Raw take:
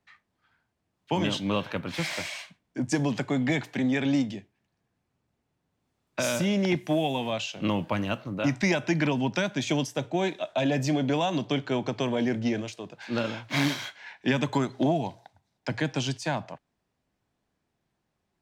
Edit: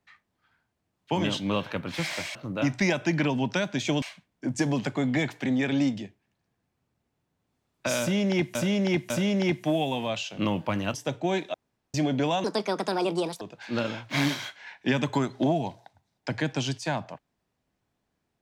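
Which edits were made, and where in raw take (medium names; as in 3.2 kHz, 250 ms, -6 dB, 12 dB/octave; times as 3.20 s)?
6.33–6.88 s: loop, 3 plays
8.17–9.84 s: move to 2.35 s
10.44–10.84 s: room tone
11.34–12.81 s: speed 151%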